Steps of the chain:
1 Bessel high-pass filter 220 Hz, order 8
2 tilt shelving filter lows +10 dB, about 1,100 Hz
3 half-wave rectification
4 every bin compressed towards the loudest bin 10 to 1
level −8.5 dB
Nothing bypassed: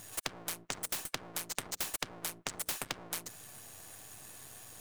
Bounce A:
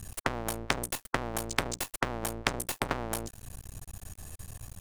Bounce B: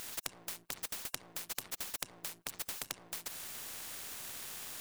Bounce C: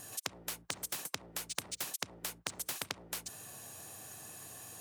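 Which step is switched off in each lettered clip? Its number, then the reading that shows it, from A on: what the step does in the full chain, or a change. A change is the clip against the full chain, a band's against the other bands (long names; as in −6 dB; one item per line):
1, 8 kHz band −10.0 dB
2, 4 kHz band +3.0 dB
3, change in crest factor +2.5 dB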